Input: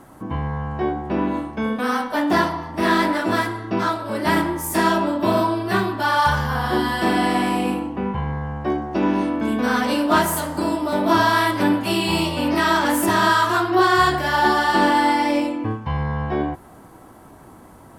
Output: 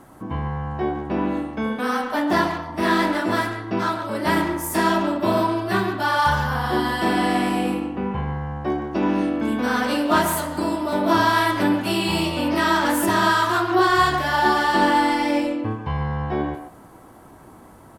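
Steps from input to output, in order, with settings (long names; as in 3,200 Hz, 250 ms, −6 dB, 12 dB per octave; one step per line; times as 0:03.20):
far-end echo of a speakerphone 140 ms, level −8 dB
level −1.5 dB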